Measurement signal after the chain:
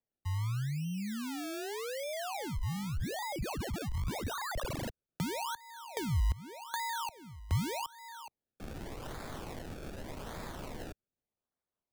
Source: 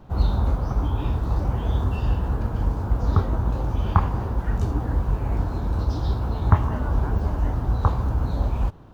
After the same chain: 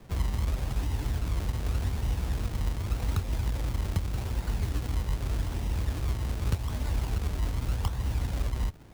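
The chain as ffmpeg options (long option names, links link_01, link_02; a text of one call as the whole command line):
ffmpeg -i in.wav -filter_complex "[0:a]acrusher=samples=30:mix=1:aa=0.000001:lfo=1:lforange=30:lforate=0.84,acrossover=split=120|2700[link_01][link_02][link_03];[link_01]acompressor=threshold=-21dB:ratio=4[link_04];[link_02]acompressor=threshold=-34dB:ratio=4[link_05];[link_03]acompressor=threshold=-38dB:ratio=4[link_06];[link_04][link_05][link_06]amix=inputs=3:normalize=0,volume=-4dB" out.wav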